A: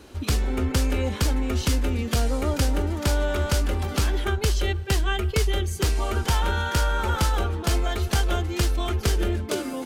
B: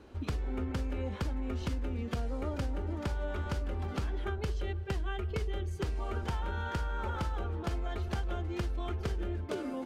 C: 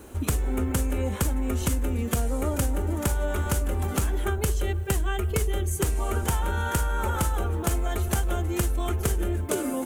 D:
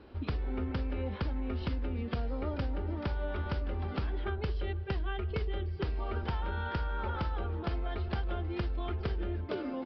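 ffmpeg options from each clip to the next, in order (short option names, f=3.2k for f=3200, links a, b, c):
-af "lowpass=f=1.5k:p=1,bandreject=f=73.12:t=h:w=4,bandreject=f=146.24:t=h:w=4,bandreject=f=219.36:t=h:w=4,bandreject=f=292.48:t=h:w=4,bandreject=f=365.6:t=h:w=4,bandreject=f=438.72:t=h:w=4,bandreject=f=511.84:t=h:w=4,bandreject=f=584.96:t=h:w=4,bandreject=f=658.08:t=h:w=4,bandreject=f=731.2:t=h:w=4,acompressor=threshold=-25dB:ratio=6,volume=-5.5dB"
-af "aexciter=amount=11.2:drive=3.4:freq=6.9k,volume=8.5dB"
-af "aresample=11025,aresample=44100,volume=-8dB"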